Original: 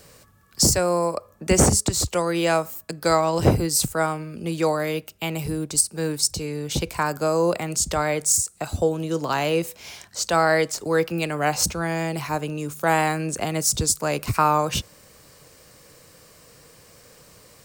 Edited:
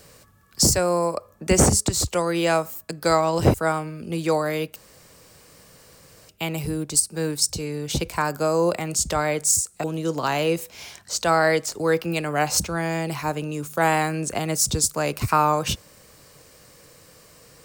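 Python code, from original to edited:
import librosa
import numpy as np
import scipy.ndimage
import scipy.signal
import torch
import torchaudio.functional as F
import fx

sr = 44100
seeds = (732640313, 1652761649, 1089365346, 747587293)

y = fx.edit(x, sr, fx.cut(start_s=3.54, length_s=0.34),
    fx.insert_room_tone(at_s=5.1, length_s=1.53),
    fx.cut(start_s=8.65, length_s=0.25), tone=tone)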